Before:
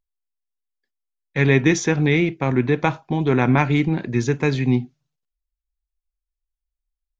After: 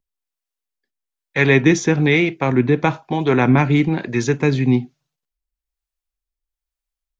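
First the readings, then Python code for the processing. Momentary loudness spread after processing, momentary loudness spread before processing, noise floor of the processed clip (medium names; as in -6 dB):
7 LU, 6 LU, under -85 dBFS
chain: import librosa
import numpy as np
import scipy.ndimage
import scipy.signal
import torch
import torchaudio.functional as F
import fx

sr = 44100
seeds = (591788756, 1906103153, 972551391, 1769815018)

y = fx.low_shelf(x, sr, hz=97.0, db=-7.5)
y = fx.harmonic_tremolo(y, sr, hz=1.1, depth_pct=50, crossover_hz=410.0)
y = F.gain(torch.from_numpy(y), 6.0).numpy()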